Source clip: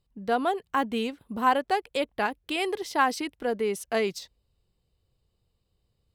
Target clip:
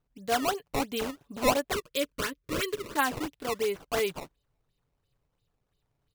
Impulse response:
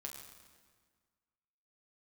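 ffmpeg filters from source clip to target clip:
-filter_complex "[0:a]lowpass=f=4k:t=q:w=2.5,aecho=1:1:7:0.54,acrusher=samples=16:mix=1:aa=0.000001:lfo=1:lforange=25.6:lforate=2.9,asettb=1/sr,asplit=3[a][b][c];[a]atrim=end=1.724[d];[b]atrim=start=1.72:end=2.97,asetpts=PTS-STARTPTS,afade=t=in:d=0.004:c=qsin,afade=t=out:st=1.246:d=0.004:c=qsin,asuperstop=centerf=780:order=4:qfactor=2[e];[c]atrim=start=2.966[f];[d][e]acrossfade=d=0.004:c1=hsin:c2=qsin[g];[g][f]acrossfade=d=0.004:c1=qsin:c2=hsin,volume=-4.5dB"

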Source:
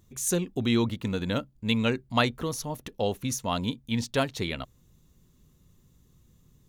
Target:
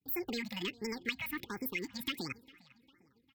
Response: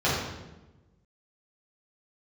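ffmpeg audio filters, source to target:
-filter_complex "[0:a]highpass=43,agate=range=-33dB:threshold=-49dB:ratio=3:detection=peak,acrossover=split=300|860|3400[a][b][c][d];[b]volume=35dB,asoftclip=hard,volume=-35dB[e];[a][e][c][d]amix=inputs=4:normalize=0,firequalizer=gain_entry='entry(150,0);entry(230,-15);entry(370,-15);entry(1100,7);entry(2100,-1);entry(3300,-18);entry(7800,1);entry(12000,-6)':delay=0.05:min_phase=1,acompressor=threshold=-32dB:ratio=6,aecho=1:1:4.8:0.42,asplit=2[f][g];[g]adelay=805,lowpass=f=3k:p=1,volume=-22dB,asplit=2[h][i];[i]adelay=805,lowpass=f=3k:p=1,volume=0.54,asplit=2[j][k];[k]adelay=805,lowpass=f=3k:p=1,volume=0.54,asplit=2[l][m];[m]adelay=805,lowpass=f=3k:p=1,volume=0.54[n];[f][h][j][l][n]amix=inputs=5:normalize=0,asetrate=88200,aresample=44100,afftfilt=real='re*(1-between(b*sr/1024,340*pow(3600/340,0.5+0.5*sin(2*PI*1.4*pts/sr))/1.41,340*pow(3600/340,0.5+0.5*sin(2*PI*1.4*pts/sr))*1.41))':imag='im*(1-between(b*sr/1024,340*pow(3600/340,0.5+0.5*sin(2*PI*1.4*pts/sr))/1.41,340*pow(3600/340,0.5+0.5*sin(2*PI*1.4*pts/sr))*1.41))':win_size=1024:overlap=0.75"

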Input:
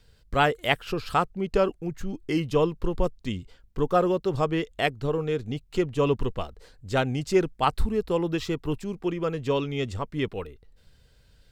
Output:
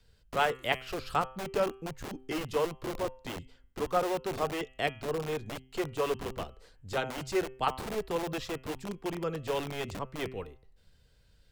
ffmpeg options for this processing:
-filter_complex "[0:a]bandreject=f=129.9:t=h:w=4,bandreject=f=259.8:t=h:w=4,bandreject=f=389.7:t=h:w=4,bandreject=f=519.6:t=h:w=4,bandreject=f=649.5:t=h:w=4,bandreject=f=779.4:t=h:w=4,bandreject=f=909.3:t=h:w=4,bandreject=f=1.0392k:t=h:w=4,bandreject=f=1.1691k:t=h:w=4,bandreject=f=1.299k:t=h:w=4,bandreject=f=1.4289k:t=h:w=4,bandreject=f=1.5588k:t=h:w=4,bandreject=f=1.6887k:t=h:w=4,bandreject=f=1.8186k:t=h:w=4,bandreject=f=1.9485k:t=h:w=4,bandreject=f=2.0784k:t=h:w=4,bandreject=f=2.2083k:t=h:w=4,bandreject=f=2.3382k:t=h:w=4,bandreject=f=2.4681k:t=h:w=4,bandreject=f=2.598k:t=h:w=4,bandreject=f=2.7279k:t=h:w=4,bandreject=f=2.8578k:t=h:w=4,bandreject=f=2.9877k:t=h:w=4,bandreject=f=3.1176k:t=h:w=4,bandreject=f=3.2475k:t=h:w=4,acrossover=split=290|500|1700[a][b][c][d];[a]aeval=exprs='(mod(28.2*val(0)+1,2)-1)/28.2':c=same[e];[e][b][c][d]amix=inputs=4:normalize=0,volume=-5.5dB"

